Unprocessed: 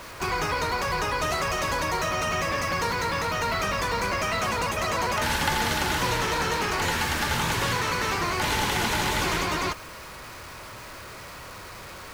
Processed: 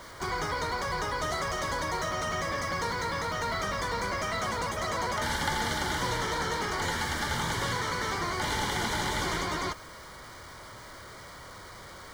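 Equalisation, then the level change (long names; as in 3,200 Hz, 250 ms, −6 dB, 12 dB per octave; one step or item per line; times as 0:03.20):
Butterworth band-reject 2,600 Hz, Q 4.8
parametric band 13,000 Hz −9.5 dB 0.26 octaves
−4.5 dB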